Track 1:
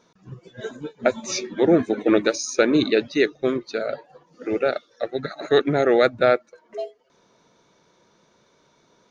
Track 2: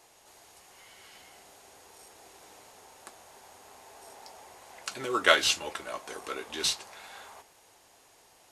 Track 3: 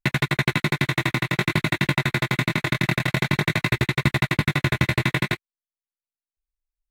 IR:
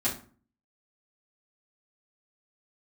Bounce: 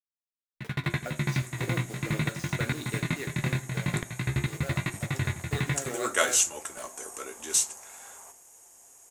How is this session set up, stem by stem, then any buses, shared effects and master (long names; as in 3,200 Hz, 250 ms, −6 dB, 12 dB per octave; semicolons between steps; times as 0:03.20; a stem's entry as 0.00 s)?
−16.5 dB, 0.00 s, bus A, send −9.5 dB, hold until the input has moved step −24 dBFS; high-pass filter 1,000 Hz 6 dB per octave; upward compression, threshold −32 dBFS
−4.0 dB, 0.90 s, no bus, send −20 dB, high shelf with overshoot 5,500 Hz +9.5 dB, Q 3
−1.0 dB, 0.55 s, bus A, send −19 dB, flanger 0.44 Hz, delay 9 ms, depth 8.5 ms, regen +54%; low-shelf EQ 380 Hz −6.5 dB; shaped tremolo saw up 2.3 Hz, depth 100%
bus A: 0.0 dB, bass and treble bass +14 dB, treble −4 dB; brickwall limiter −18.5 dBFS, peak gain reduction 6 dB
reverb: on, RT60 0.40 s, pre-delay 4 ms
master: no processing